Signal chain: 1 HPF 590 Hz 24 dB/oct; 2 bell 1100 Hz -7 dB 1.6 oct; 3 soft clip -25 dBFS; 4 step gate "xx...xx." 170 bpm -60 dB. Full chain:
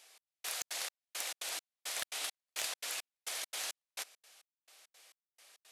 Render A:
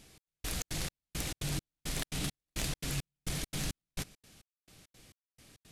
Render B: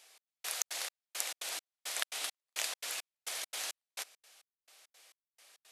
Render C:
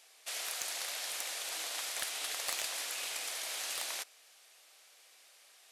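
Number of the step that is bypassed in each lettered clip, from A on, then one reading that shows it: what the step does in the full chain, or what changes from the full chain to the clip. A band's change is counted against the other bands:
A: 1, 250 Hz band +26.0 dB; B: 3, distortion -13 dB; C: 4, crest factor change -3.0 dB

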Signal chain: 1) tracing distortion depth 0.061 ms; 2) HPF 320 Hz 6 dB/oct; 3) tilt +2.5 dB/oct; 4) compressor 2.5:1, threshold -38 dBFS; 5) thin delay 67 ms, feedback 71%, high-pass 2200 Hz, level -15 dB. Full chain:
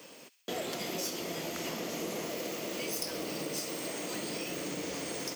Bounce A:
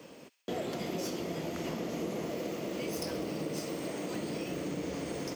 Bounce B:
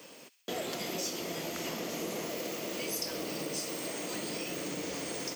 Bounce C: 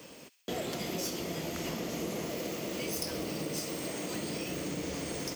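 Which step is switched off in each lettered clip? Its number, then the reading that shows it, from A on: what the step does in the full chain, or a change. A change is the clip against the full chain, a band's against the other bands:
3, 8 kHz band -8.0 dB; 1, crest factor change -4.0 dB; 2, crest factor change -2.0 dB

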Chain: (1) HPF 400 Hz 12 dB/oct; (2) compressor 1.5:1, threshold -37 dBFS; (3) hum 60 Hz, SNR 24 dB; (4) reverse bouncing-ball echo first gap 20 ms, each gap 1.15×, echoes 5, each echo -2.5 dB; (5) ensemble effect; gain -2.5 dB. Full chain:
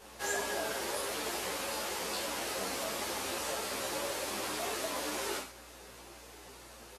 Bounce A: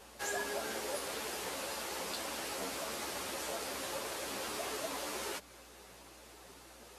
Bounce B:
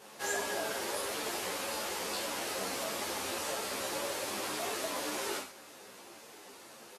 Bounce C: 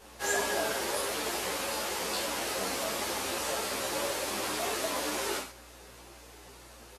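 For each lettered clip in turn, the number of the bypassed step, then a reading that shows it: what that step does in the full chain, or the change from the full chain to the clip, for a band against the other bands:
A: 4, loudness change -3.5 LU; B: 3, 125 Hz band -1.5 dB; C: 2, mean gain reduction 2.5 dB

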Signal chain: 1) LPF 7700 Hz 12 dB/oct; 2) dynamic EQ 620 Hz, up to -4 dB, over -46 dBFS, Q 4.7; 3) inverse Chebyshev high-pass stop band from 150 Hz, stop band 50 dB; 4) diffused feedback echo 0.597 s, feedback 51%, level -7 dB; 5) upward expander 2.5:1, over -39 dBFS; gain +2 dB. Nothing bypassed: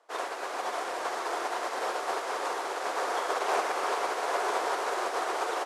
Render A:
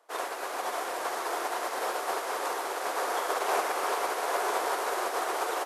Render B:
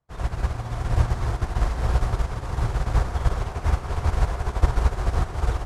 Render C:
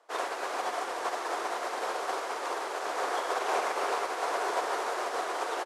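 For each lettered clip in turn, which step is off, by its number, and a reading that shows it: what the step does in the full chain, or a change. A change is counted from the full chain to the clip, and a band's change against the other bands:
1, 8 kHz band +3.5 dB; 3, 250 Hz band +12.0 dB; 4, loudness change -1.0 LU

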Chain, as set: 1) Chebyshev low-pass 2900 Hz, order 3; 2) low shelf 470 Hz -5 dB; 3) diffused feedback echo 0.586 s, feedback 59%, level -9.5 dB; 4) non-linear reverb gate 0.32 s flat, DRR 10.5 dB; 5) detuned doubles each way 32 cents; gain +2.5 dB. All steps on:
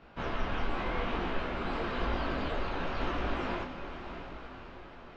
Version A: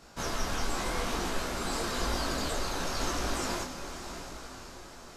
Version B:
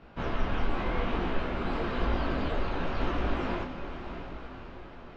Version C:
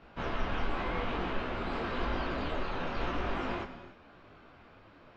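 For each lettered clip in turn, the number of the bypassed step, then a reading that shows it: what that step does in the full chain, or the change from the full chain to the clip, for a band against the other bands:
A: 1, 4 kHz band +7.5 dB; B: 2, 125 Hz band +4.0 dB; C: 3, momentary loudness spread change -8 LU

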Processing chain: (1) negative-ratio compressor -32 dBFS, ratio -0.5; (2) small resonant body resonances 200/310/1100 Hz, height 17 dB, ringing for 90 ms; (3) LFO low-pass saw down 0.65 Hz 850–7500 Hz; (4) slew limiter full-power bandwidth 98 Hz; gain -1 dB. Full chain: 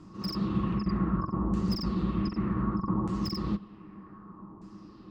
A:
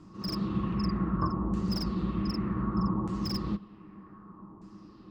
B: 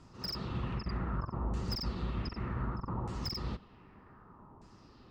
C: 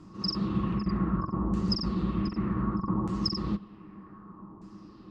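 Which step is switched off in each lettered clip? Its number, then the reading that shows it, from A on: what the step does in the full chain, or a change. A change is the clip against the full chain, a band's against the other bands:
1, 4 kHz band +2.0 dB; 2, 250 Hz band -7.5 dB; 4, distortion -15 dB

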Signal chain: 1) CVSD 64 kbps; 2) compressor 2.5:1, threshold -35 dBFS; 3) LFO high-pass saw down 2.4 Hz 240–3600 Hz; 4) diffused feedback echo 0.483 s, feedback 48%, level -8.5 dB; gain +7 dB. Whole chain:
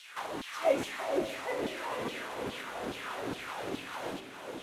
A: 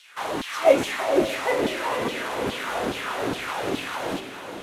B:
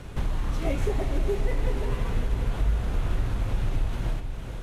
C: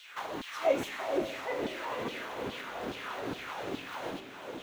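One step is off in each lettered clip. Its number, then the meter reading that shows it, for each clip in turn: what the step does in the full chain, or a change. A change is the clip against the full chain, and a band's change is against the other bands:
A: 2, mean gain reduction 9.5 dB; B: 3, 125 Hz band +24.0 dB; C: 1, 8 kHz band -3.0 dB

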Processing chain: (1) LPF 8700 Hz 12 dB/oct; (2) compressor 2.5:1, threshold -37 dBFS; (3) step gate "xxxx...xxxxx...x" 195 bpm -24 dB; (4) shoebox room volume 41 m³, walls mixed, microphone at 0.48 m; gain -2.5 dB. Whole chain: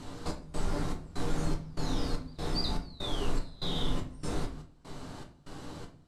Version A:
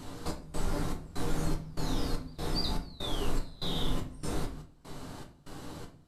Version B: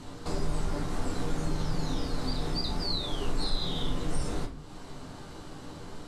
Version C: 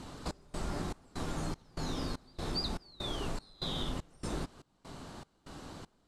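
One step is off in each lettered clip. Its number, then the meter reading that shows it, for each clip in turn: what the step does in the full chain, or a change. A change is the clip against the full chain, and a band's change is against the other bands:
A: 1, 8 kHz band +2.0 dB; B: 3, loudness change +3.0 LU; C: 4, echo-to-direct -1.5 dB to none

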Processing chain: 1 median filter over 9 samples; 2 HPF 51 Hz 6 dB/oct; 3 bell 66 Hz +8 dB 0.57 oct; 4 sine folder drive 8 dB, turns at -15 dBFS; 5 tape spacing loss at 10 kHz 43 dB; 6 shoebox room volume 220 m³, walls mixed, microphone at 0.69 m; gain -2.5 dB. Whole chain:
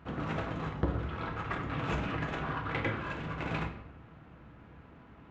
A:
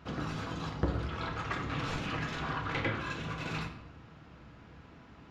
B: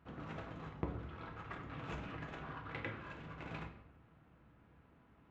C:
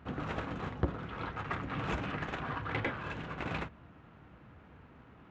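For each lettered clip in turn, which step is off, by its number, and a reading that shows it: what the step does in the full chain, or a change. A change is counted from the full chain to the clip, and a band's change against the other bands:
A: 1, 4 kHz band +5.5 dB; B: 4, distortion -12 dB; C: 6, echo-to-direct -3.5 dB to none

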